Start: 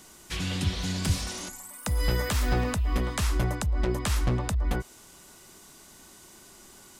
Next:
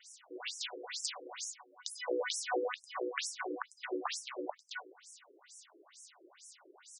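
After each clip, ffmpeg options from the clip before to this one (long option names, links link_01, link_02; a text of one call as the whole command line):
ffmpeg -i in.wav -af "aecho=1:1:101|202|303:0.075|0.036|0.0173,afftfilt=real='re*between(b*sr/1024,370*pow(7700/370,0.5+0.5*sin(2*PI*2.2*pts/sr))/1.41,370*pow(7700/370,0.5+0.5*sin(2*PI*2.2*pts/sr))*1.41)':imag='im*between(b*sr/1024,370*pow(7700/370,0.5+0.5*sin(2*PI*2.2*pts/sr))/1.41,370*pow(7700/370,0.5+0.5*sin(2*PI*2.2*pts/sr))*1.41)':win_size=1024:overlap=0.75,volume=1dB" out.wav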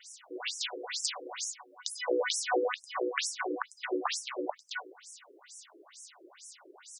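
ffmpeg -i in.wav -af "acontrast=72,volume=-1.5dB" out.wav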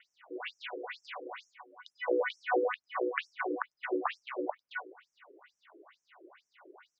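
ffmpeg -i in.wav -af "lowpass=frequency=2500:width=0.5412,lowpass=frequency=2500:width=1.3066" out.wav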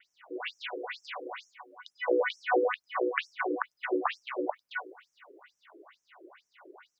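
ffmpeg -i in.wav -af "adynamicequalizer=threshold=0.00398:dfrequency=3500:dqfactor=0.7:tfrequency=3500:tqfactor=0.7:attack=5:release=100:ratio=0.375:range=2:mode=boostabove:tftype=highshelf,volume=3dB" out.wav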